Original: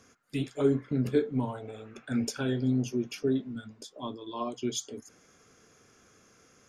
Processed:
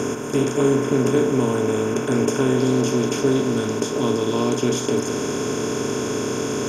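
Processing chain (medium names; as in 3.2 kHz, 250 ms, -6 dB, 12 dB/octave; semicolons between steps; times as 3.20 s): spectral levelling over time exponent 0.2; peaking EQ 4.2 kHz -12.5 dB 0.57 oct, from 2.58 s -4 dB; trim +2.5 dB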